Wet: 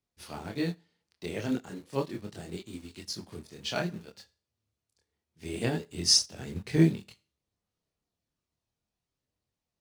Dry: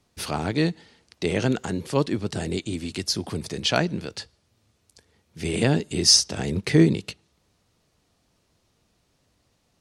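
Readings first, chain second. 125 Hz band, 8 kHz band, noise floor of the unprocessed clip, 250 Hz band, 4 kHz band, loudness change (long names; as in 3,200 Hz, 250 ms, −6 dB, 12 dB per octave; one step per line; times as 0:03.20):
−7.5 dB, −7.0 dB, −69 dBFS, −7.5 dB, −7.0 dB, −6.5 dB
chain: multi-voice chorus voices 2, 0.32 Hz, delay 26 ms, depth 3.5 ms
in parallel at −8 dB: bit-depth reduction 6 bits, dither none
on the sum: four-comb reverb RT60 0.36 s, combs from 27 ms, DRR 15.5 dB
expander for the loud parts 1.5 to 1, over −37 dBFS
level −5 dB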